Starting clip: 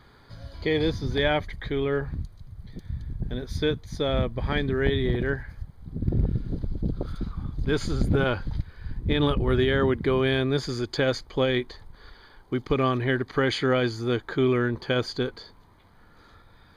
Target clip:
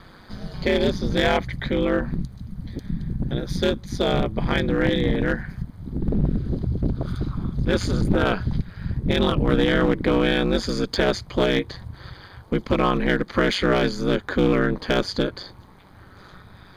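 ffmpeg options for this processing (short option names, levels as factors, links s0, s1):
-filter_complex "[0:a]asplit=2[s0][s1];[s1]acompressor=threshold=0.0251:ratio=6,volume=0.75[s2];[s0][s2]amix=inputs=2:normalize=0,aeval=exprs='clip(val(0),-1,0.0944)':c=same,aeval=exprs='val(0)*sin(2*PI*95*n/s)':c=same,volume=1.88"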